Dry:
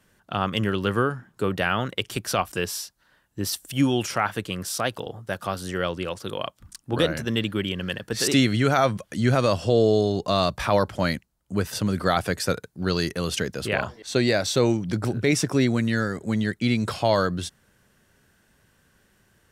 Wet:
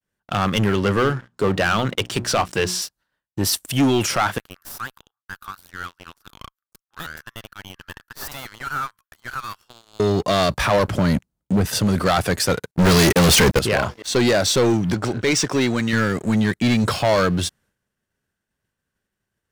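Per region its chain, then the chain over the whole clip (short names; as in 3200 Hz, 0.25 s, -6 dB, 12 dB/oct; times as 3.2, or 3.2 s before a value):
0.75–2.82 LPF 7700 Hz + notches 60/120/180/240/300/360 Hz
4.38–10 inverse Chebyshev high-pass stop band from 650 Hz + tube stage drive 27 dB, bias 0.6 + band shelf 4400 Hz -14 dB 2.6 oct
10.88–11.66 bell 180 Hz +9.5 dB 3 oct + compressor 2:1, threshold -21 dBFS
12.71–13.59 sample leveller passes 5 + gate -22 dBFS, range -25 dB
14.94–15.93 LPF 8000 Hz 24 dB/oct + low shelf 330 Hz -9.5 dB
whole clip: expander -54 dBFS; sample leveller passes 3; gain -2.5 dB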